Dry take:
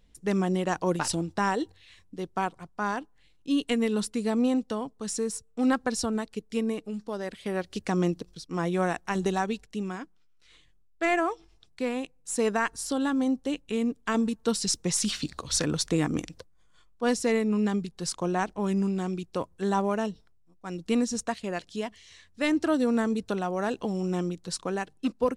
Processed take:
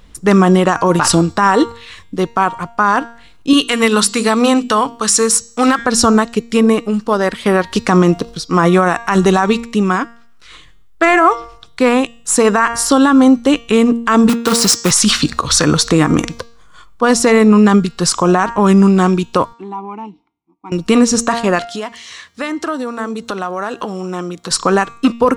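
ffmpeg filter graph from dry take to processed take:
-filter_complex "[0:a]asettb=1/sr,asplit=3[s0][s1][s2];[s0]atrim=end=3.534[s3];[s1]atrim=start=3.53:end=5.79,asetpts=PTS-STARTPTS,afade=t=in:d=0.004:c=qsin,afade=t=out:st=2.256:d=0.004:c=qsin,volume=7.94,asoftclip=hard,volume=0.126,tiltshelf=f=830:g=-5.5,bandreject=f=50:t=h:w=6,bandreject=f=100:t=h:w=6,bandreject=f=150:t=h:w=6,bandreject=f=200:t=h:w=6,bandreject=f=250:t=h:w=6,bandreject=f=300:t=h:w=6,bandreject=f=350:t=h:w=6,bandreject=f=400:t=h:w=6[s4];[s2]atrim=start=5.786[s5];[s3][s4]acrossfade=d=0.004:c1=hsin:c2=qsin[s6];[s6][s5]acrossfade=d=0.004:c1=qsin:c2=hsin,asettb=1/sr,asplit=3[s7][s8][s9];[s7]atrim=end=14.294[s10];[s8]atrim=start=14.29:end=14.91,asetpts=PTS-STARTPTS,afade=t=in:d=0.004:c=qsin,afade=t=out:st=0.616:d=0.004:c=qsin,highpass=140,acrusher=bits=2:mode=log:mix=0:aa=0.000001[s11];[s9]atrim=start=14.906[s12];[s10][s11]acrossfade=d=0.004:c1=hsin:c2=qsin[s13];[s13][s12]acrossfade=d=0.004:c1=qsin:c2=hsin,asettb=1/sr,asplit=3[s14][s15][s16];[s14]atrim=end=19.534[s17];[s15]atrim=start=19.53:end=20.72,asetpts=PTS-STARTPTS,afade=t=in:d=0.004:c=qsin,afade=t=out:st=1.186:d=0.004:c=qsin,asplit=3[s18][s19][s20];[s18]bandpass=f=300:t=q:w=8,volume=1[s21];[s19]bandpass=f=870:t=q:w=8,volume=0.501[s22];[s20]bandpass=f=2240:t=q:w=8,volume=0.355[s23];[s21][s22][s23]amix=inputs=3:normalize=0,acompressor=threshold=0.00501:ratio=2.5:attack=3.2:release=140:knee=1:detection=peak[s24];[s16]atrim=start=20.716[s25];[s17][s24]acrossfade=d=0.004:c1=hsin:c2=qsin[s26];[s26][s25]acrossfade=d=0.004:c1=qsin:c2=hsin,asettb=1/sr,asplit=3[s27][s28][s29];[s27]atrim=end=21.654[s30];[s28]atrim=start=21.65:end=24.51,asetpts=PTS-STARTPTS,afade=t=in:d=0.004:c=qsin,afade=t=out:st=2.856:d=0.004:c=qsin,highpass=f=270:p=1,acompressor=threshold=0.0112:ratio=4:attack=3.2:release=140:knee=1:detection=peak[s31];[s29]atrim=start=24.506[s32];[s30][s31]acrossfade=d=0.004:c1=hsin:c2=qsin[s33];[s33][s32]acrossfade=d=0.004:c1=qsin:c2=hsin,equalizer=f=1200:t=o:w=0.72:g=9.5,bandreject=f=233.1:t=h:w=4,bandreject=f=466.2:t=h:w=4,bandreject=f=699.3:t=h:w=4,bandreject=f=932.4:t=h:w=4,bandreject=f=1165.5:t=h:w=4,bandreject=f=1398.6:t=h:w=4,bandreject=f=1631.7:t=h:w=4,bandreject=f=1864.8:t=h:w=4,bandreject=f=2097.9:t=h:w=4,bandreject=f=2331:t=h:w=4,bandreject=f=2564.1:t=h:w=4,bandreject=f=2797.2:t=h:w=4,bandreject=f=3030.3:t=h:w=4,bandreject=f=3263.4:t=h:w=4,bandreject=f=3496.5:t=h:w=4,bandreject=f=3729.6:t=h:w=4,bandreject=f=3962.7:t=h:w=4,bandreject=f=4195.8:t=h:w=4,bandreject=f=4428.9:t=h:w=4,bandreject=f=4662:t=h:w=4,bandreject=f=4895.1:t=h:w=4,bandreject=f=5128.2:t=h:w=4,bandreject=f=5361.3:t=h:w=4,bandreject=f=5594.4:t=h:w=4,bandreject=f=5827.5:t=h:w=4,bandreject=f=6060.6:t=h:w=4,bandreject=f=6293.7:t=h:w=4,bandreject=f=6526.8:t=h:w=4,bandreject=f=6759.9:t=h:w=4,bandreject=f=6993:t=h:w=4,bandreject=f=7226.1:t=h:w=4,bandreject=f=7459.2:t=h:w=4,bandreject=f=7692.3:t=h:w=4,bandreject=f=7925.4:t=h:w=4,alimiter=level_in=8.91:limit=0.891:release=50:level=0:latency=1,volume=0.891"

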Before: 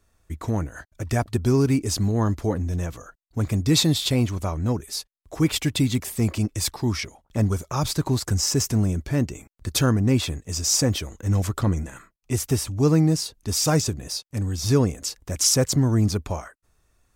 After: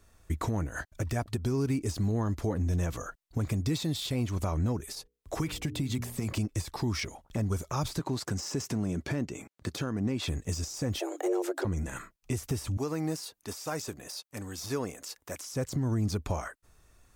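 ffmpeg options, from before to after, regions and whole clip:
-filter_complex "[0:a]asettb=1/sr,asplit=3[s0][s1][s2];[s0]atrim=end=4.954[s3];[s1]atrim=start=4.95:end=6.33,asetpts=PTS-STARTPTS,afade=t=in:d=0.004:c=qsin,afade=t=out:st=1.376:d=0.004:c=qsin,bandreject=f=60:t=h:w=6,bandreject=f=120:t=h:w=6,bandreject=f=180:t=h:w=6,bandreject=f=240:t=h:w=6,bandreject=f=300:t=h:w=6,bandreject=f=360:t=h:w=6,bandreject=f=420:t=h:w=6,bandreject=f=480:t=h:w=6,acrossover=split=110|930[s4][s5][s6];[s4]acompressor=threshold=0.0141:ratio=4[s7];[s5]acompressor=threshold=0.0316:ratio=4[s8];[s6]acompressor=threshold=0.0112:ratio=4[s9];[s7][s8][s9]amix=inputs=3:normalize=0[s10];[s2]atrim=start=6.326[s11];[s3][s10]acrossfade=d=0.004:c1=hsin:c2=qsin[s12];[s12][s11]acrossfade=d=0.004:c1=qsin:c2=hsin,asettb=1/sr,asplit=3[s13][s14][s15];[s13]atrim=end=7.994[s16];[s14]atrim=start=7.99:end=10.28,asetpts=PTS-STARTPTS,afade=t=in:d=0.004:c=qsin,afade=t=out:st=2.286:d=0.004:c=qsin,highpass=150,highshelf=f=8700:g=-10.5[s17];[s15]atrim=start=10.276[s18];[s16][s17]acrossfade=d=0.004:c1=hsin:c2=qsin[s19];[s19][s18]acrossfade=d=0.004:c1=qsin:c2=hsin,asettb=1/sr,asplit=3[s20][s21][s22];[s20]atrim=end=10.994[s23];[s21]atrim=start=10.99:end=11.65,asetpts=PTS-STARTPTS,afade=t=in:d=0.004:c=qsin,afade=t=out:st=0.656:d=0.004:c=qsin,equalizer=f=320:t=o:w=1.7:g=4.5,afreqshift=260[s24];[s22]atrim=start=11.646[s25];[s23][s24]acrossfade=d=0.004:c1=hsin:c2=qsin[s26];[s26][s25]acrossfade=d=0.004:c1=qsin:c2=hsin,asettb=1/sr,asplit=3[s27][s28][s29];[s27]atrim=end=12.774[s30];[s28]atrim=start=12.77:end=15.52,asetpts=PTS-STARTPTS,afade=t=in:d=0.004:c=qsin,afade=t=out:st=2.746:d=0.004:c=qsin,highpass=f=1200:p=1,equalizer=f=5000:w=0.37:g=-7.5[s31];[s29]atrim=start=15.516[s32];[s30][s31]acrossfade=d=0.004:c1=hsin:c2=qsin[s33];[s33][s32]acrossfade=d=0.004:c1=qsin:c2=hsin,acompressor=threshold=0.0316:ratio=5,alimiter=level_in=1.12:limit=0.0631:level=0:latency=1:release=102,volume=0.891,deesser=0.9,volume=1.58"

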